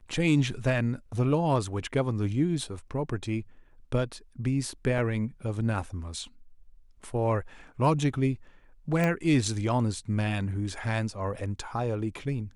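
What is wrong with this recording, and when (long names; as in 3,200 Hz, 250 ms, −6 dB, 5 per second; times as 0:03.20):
0:04.98: drop-out 4 ms
0:09.04: click −15 dBFS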